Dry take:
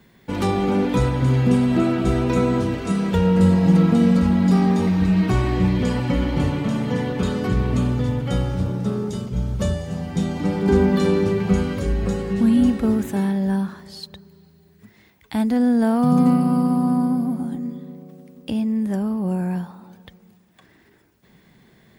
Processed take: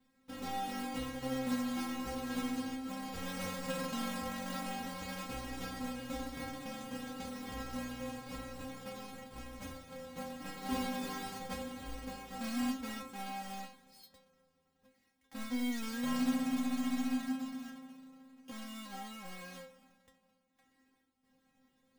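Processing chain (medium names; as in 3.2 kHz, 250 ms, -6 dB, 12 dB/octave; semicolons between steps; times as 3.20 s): square wave that keeps the level; inharmonic resonator 260 Hz, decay 0.33 s, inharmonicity 0.002; trim -8 dB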